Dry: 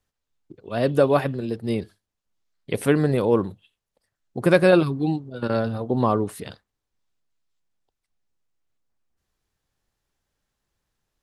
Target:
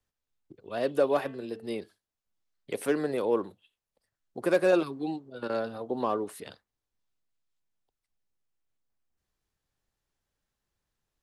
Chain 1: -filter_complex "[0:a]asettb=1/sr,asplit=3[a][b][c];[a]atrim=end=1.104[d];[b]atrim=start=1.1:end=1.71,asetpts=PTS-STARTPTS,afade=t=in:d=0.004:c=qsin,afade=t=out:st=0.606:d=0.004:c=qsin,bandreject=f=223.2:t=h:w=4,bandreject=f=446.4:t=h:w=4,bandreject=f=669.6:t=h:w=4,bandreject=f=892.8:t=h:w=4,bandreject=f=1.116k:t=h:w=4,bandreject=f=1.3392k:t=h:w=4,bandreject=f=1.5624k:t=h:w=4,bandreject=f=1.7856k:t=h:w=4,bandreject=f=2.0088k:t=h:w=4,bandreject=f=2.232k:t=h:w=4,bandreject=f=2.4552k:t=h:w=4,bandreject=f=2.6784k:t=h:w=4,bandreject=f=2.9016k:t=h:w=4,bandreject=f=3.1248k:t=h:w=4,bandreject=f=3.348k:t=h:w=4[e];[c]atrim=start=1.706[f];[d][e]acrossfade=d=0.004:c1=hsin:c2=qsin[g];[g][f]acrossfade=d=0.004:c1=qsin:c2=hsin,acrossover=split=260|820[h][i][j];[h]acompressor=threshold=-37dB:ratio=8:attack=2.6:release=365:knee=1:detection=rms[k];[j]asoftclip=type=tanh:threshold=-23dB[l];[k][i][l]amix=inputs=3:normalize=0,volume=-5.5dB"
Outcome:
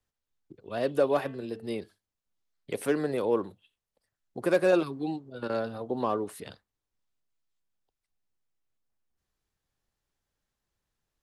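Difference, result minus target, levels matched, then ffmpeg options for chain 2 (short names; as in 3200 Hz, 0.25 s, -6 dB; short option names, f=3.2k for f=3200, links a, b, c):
compressor: peak gain reduction -6 dB
-filter_complex "[0:a]asettb=1/sr,asplit=3[a][b][c];[a]atrim=end=1.104[d];[b]atrim=start=1.1:end=1.71,asetpts=PTS-STARTPTS,afade=t=in:d=0.004:c=qsin,afade=t=out:st=0.606:d=0.004:c=qsin,bandreject=f=223.2:t=h:w=4,bandreject=f=446.4:t=h:w=4,bandreject=f=669.6:t=h:w=4,bandreject=f=892.8:t=h:w=4,bandreject=f=1.116k:t=h:w=4,bandreject=f=1.3392k:t=h:w=4,bandreject=f=1.5624k:t=h:w=4,bandreject=f=1.7856k:t=h:w=4,bandreject=f=2.0088k:t=h:w=4,bandreject=f=2.232k:t=h:w=4,bandreject=f=2.4552k:t=h:w=4,bandreject=f=2.6784k:t=h:w=4,bandreject=f=2.9016k:t=h:w=4,bandreject=f=3.1248k:t=h:w=4,bandreject=f=3.348k:t=h:w=4[e];[c]atrim=start=1.706[f];[d][e]acrossfade=d=0.004:c1=hsin:c2=qsin[g];[g][f]acrossfade=d=0.004:c1=qsin:c2=hsin,acrossover=split=260|820[h][i][j];[h]acompressor=threshold=-44dB:ratio=8:attack=2.6:release=365:knee=1:detection=rms[k];[j]asoftclip=type=tanh:threshold=-23dB[l];[k][i][l]amix=inputs=3:normalize=0,volume=-5.5dB"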